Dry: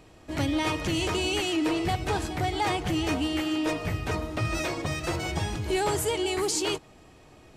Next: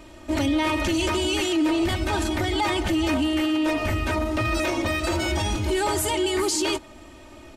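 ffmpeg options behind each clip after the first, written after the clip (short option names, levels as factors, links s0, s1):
-af "aecho=1:1:3.3:0.83,alimiter=limit=0.0841:level=0:latency=1:release=20,volume=1.88"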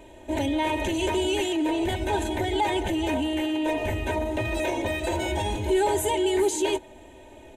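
-af "superequalizer=7b=2.51:8b=1.58:9b=1.78:10b=0.251:14b=0.282,volume=0.631"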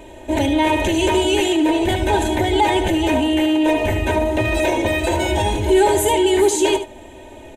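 -af "aecho=1:1:74:0.299,volume=2.51"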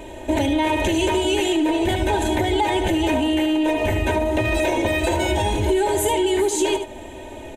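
-af "acompressor=threshold=0.1:ratio=6,aeval=exprs='0.224*(cos(1*acos(clip(val(0)/0.224,-1,1)))-cos(1*PI/2))+0.00224*(cos(6*acos(clip(val(0)/0.224,-1,1)))-cos(6*PI/2))':c=same,volume=1.41"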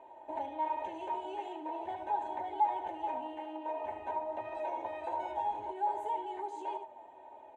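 -af "flanger=delay=7.4:depth=9.9:regen=68:speed=0.44:shape=triangular,bandpass=f=850:t=q:w=4.8:csg=0,volume=0.75"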